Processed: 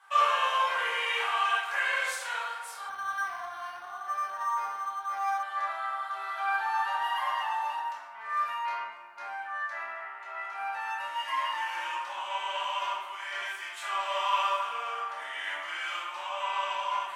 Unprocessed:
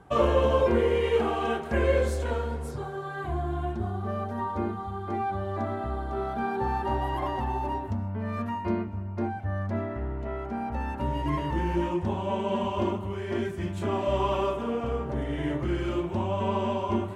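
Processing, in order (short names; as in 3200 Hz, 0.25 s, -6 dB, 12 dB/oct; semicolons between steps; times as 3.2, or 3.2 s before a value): HPF 1100 Hz 24 dB/oct; shoebox room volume 320 m³, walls mixed, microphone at 2.4 m; 2.89–5.43 decimation joined by straight lines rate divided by 6×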